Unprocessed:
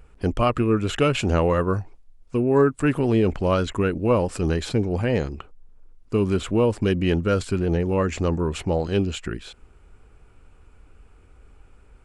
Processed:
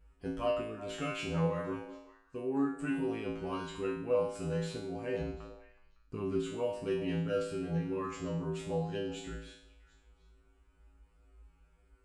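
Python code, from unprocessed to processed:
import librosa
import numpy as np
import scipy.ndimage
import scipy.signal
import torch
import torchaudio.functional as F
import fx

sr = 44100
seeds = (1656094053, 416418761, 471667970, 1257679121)

y = fx.bass_treble(x, sr, bass_db=7, treble_db=-4, at=(5.2, 6.39))
y = fx.comb_fb(y, sr, f0_hz=55.0, decay_s=0.61, harmonics='odd', damping=0.0, mix_pct=100)
y = fx.echo_stepped(y, sr, ms=186, hz=270.0, octaves=1.4, feedback_pct=70, wet_db=-11.0)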